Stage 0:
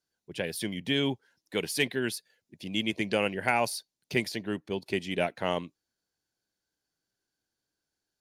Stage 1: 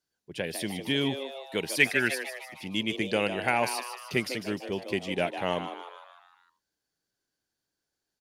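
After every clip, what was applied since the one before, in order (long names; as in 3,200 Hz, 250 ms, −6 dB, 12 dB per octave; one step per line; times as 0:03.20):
echo with shifted repeats 152 ms, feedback 53%, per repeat +130 Hz, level −9.5 dB
gain on a spectral selection 0:01.81–0:02.67, 1,200–2,700 Hz +9 dB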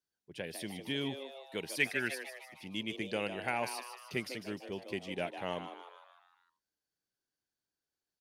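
notch filter 7,200 Hz, Q 26
level −8.5 dB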